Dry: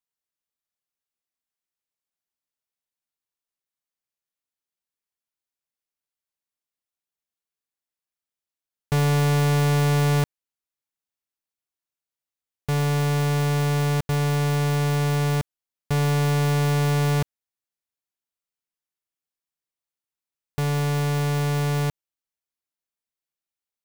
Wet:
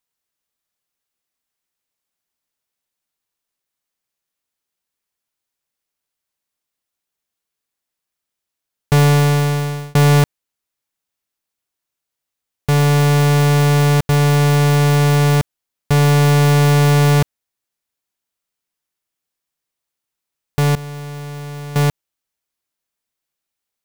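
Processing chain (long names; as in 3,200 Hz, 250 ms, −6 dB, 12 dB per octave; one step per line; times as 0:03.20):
0:09.02–0:09.95: fade out
0:20.75–0:21.76: downward expander −15 dBFS
level +9 dB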